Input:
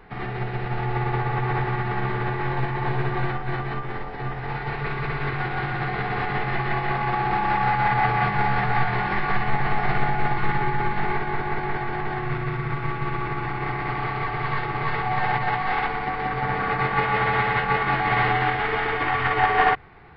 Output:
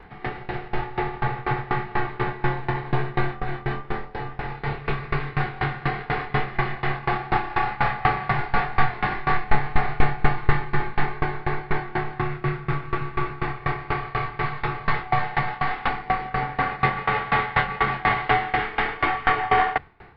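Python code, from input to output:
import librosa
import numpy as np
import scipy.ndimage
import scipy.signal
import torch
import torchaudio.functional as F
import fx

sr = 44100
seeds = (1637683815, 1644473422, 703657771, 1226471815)

y = fx.doubler(x, sr, ms=28.0, db=-2.0)
y = fx.tremolo_decay(y, sr, direction='decaying', hz=4.1, depth_db=22)
y = y * 10.0 ** (4.5 / 20.0)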